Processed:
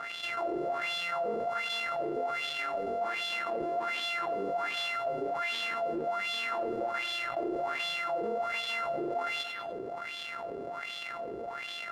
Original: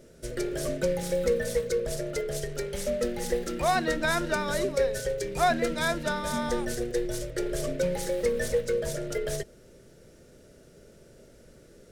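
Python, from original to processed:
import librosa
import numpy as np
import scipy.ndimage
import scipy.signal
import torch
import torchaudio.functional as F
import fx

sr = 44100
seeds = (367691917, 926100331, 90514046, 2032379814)

p1 = np.r_[np.sort(x[:len(x) // 64 * 64].reshape(-1, 64), axis=1).ravel(), x[len(x) // 64 * 64:]]
p2 = 10.0 ** (-29.0 / 20.0) * np.tanh(p1 / 10.0 ** (-29.0 / 20.0))
p3 = fx.wah_lfo(p2, sr, hz=1.3, low_hz=390.0, high_hz=3400.0, q=4.9)
p4 = p3 + fx.echo_feedback(p3, sr, ms=98, feedback_pct=40, wet_db=-19, dry=0)
p5 = fx.env_flatten(p4, sr, amount_pct=70)
y = p5 * librosa.db_to_amplitude(5.0)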